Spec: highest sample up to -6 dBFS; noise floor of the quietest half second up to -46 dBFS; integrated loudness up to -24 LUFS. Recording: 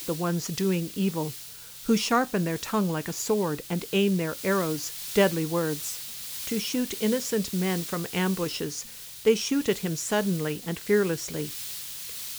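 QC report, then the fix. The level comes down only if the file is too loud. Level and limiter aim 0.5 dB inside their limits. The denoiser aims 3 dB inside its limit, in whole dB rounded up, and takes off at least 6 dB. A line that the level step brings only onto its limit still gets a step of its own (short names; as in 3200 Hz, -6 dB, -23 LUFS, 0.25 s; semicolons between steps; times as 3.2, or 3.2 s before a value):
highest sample -9.5 dBFS: OK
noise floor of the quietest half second -43 dBFS: fail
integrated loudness -27.5 LUFS: OK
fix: denoiser 6 dB, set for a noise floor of -43 dBFS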